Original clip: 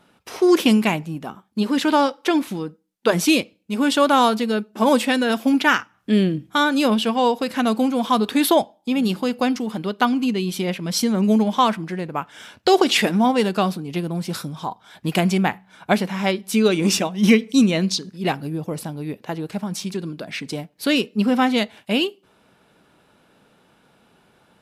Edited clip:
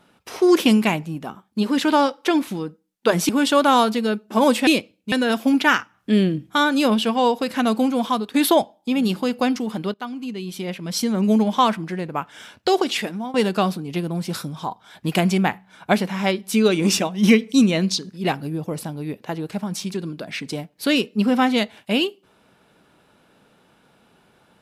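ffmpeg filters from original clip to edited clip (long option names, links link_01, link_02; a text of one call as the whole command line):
ffmpeg -i in.wav -filter_complex "[0:a]asplit=7[link_01][link_02][link_03][link_04][link_05][link_06][link_07];[link_01]atrim=end=3.292[link_08];[link_02]atrim=start=3.738:end=5.122[link_09];[link_03]atrim=start=3.288:end=3.742[link_10];[link_04]atrim=start=5.118:end=8.34,asetpts=PTS-STARTPTS,afade=type=out:start_time=2.892:duration=0.33:silence=0.177828[link_11];[link_05]atrim=start=8.34:end=9.94,asetpts=PTS-STARTPTS,afade=type=in:duration=0.004:curve=hsin:silence=0.177828,afade=type=out:start_time=1.596:duration=0.004:curve=hsin:silence=0.16788[link_12];[link_06]atrim=start=9.94:end=13.34,asetpts=PTS-STARTPTS,afade=type=in:duration=1.47:silence=0.16788,afade=type=out:start_time=2.42:duration=0.98:silence=0.158489[link_13];[link_07]atrim=start=13.34,asetpts=PTS-STARTPTS,afade=type=in:duration=0.004:curve=hsin:silence=0.158489[link_14];[link_08][link_09]acrossfade=duration=0.004:curve1=hsin:curve2=hsin[link_15];[link_15][link_10]acrossfade=duration=0.004:curve1=hsin:curve2=hsin[link_16];[link_11][link_12][link_13][link_14]concat=n=4:v=0:a=1[link_17];[link_16][link_17]acrossfade=duration=0.004:curve1=hsin:curve2=hsin" out.wav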